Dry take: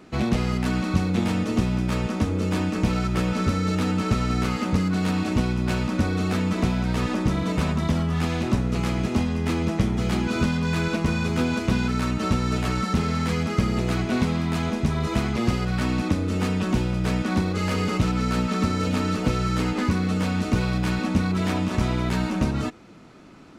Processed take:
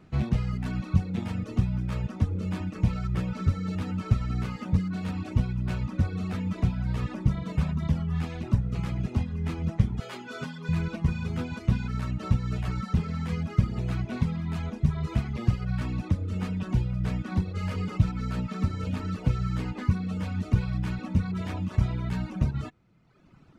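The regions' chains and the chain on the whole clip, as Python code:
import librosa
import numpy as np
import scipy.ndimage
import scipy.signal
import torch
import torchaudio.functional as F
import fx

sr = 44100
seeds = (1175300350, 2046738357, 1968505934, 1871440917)

y = fx.chain(x, sr, fx.highpass(hz=340.0, slope=12),
    fx.comb(ms=7.5, depth=0.73), at=(10.0, 10.69))
y = fx.low_shelf_res(y, sr, hz=190.0, db=7.5, q=1.5)
y = fx.dereverb_blind(y, sr, rt60_s=1.2)
y = fx.bass_treble(y, sr, bass_db=2, treble_db=-5)
y = y * 10.0 ** (-8.5 / 20.0)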